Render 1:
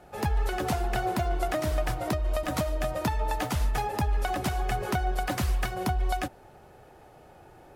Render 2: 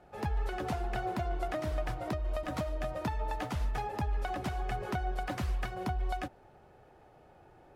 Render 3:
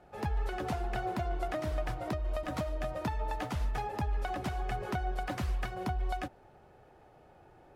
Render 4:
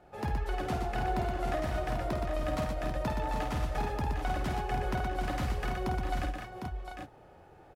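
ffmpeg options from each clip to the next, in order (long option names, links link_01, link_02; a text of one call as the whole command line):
ffmpeg -i in.wav -af "highshelf=frequency=6200:gain=-12,volume=-6dB" out.wav
ffmpeg -i in.wav -af anull out.wav
ffmpeg -i in.wav -af "aecho=1:1:51|121|754|790:0.501|0.562|0.447|0.422" out.wav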